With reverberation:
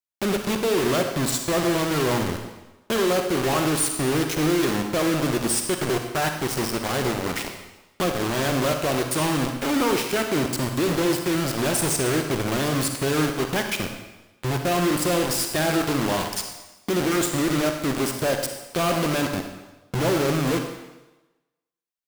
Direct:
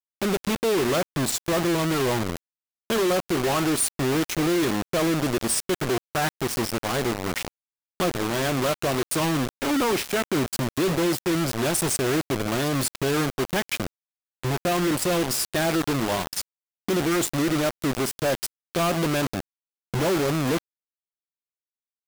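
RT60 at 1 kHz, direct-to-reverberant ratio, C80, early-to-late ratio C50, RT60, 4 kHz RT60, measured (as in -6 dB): 1.1 s, 4.5 dB, 8.0 dB, 5.5 dB, 1.1 s, 1.0 s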